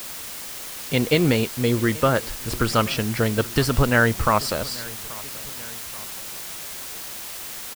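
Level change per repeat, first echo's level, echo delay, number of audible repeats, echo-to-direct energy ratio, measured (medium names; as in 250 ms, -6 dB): -5.0 dB, -21.0 dB, 832 ms, 2, -20.0 dB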